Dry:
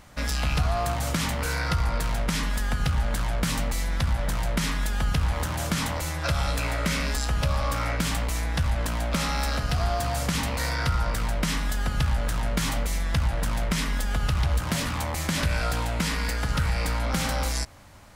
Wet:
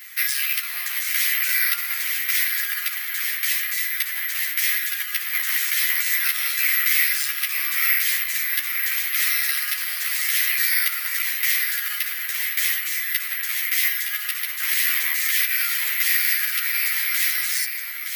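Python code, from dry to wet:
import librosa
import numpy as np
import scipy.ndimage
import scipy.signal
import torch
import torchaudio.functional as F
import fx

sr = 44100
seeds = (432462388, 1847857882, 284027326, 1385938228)

p1 = fx.high_shelf(x, sr, hz=2700.0, db=10.5)
p2 = fx.over_compress(p1, sr, threshold_db=-28.0, ratio=-0.5)
p3 = p1 + F.gain(torch.from_numpy(p2), -2.0).numpy()
p4 = fx.ladder_highpass(p3, sr, hz=1800.0, resonance_pct=70)
p5 = p4 + fx.echo_single(p4, sr, ms=916, db=-7.0, dry=0)
p6 = (np.kron(scipy.signal.resample_poly(p5, 1, 3), np.eye(3)[0]) * 3)[:len(p5)]
p7 = fx.ensemble(p6, sr)
y = F.gain(torch.from_numpy(p7), 8.0).numpy()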